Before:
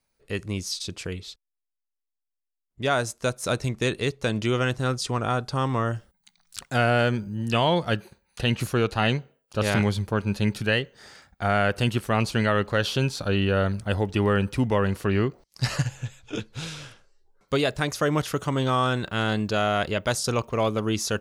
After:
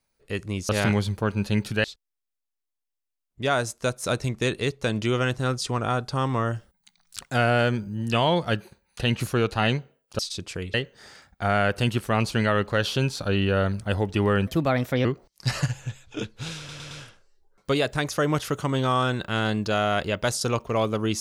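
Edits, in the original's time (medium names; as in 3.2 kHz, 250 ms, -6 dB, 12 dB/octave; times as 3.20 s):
0.69–1.24 s: swap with 9.59–10.74 s
14.47–15.21 s: speed 128%
16.74 s: stutter 0.11 s, 4 plays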